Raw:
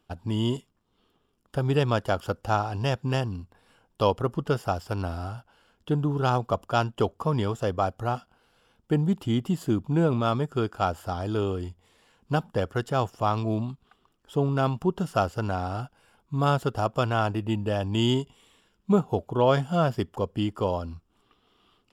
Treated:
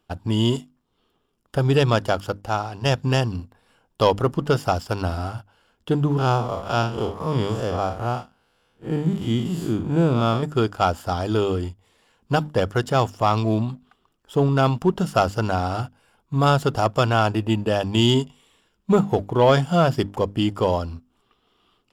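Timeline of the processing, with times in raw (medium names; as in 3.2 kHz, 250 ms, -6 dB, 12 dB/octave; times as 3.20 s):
1.90–2.85 s: fade out quadratic, to -6.5 dB
6.18–10.43 s: spectral blur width 126 ms
whole clip: hum notches 50/100/150/200/250/300 Hz; dynamic bell 5.1 kHz, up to +4 dB, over -48 dBFS, Q 0.83; waveshaping leveller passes 1; trim +2.5 dB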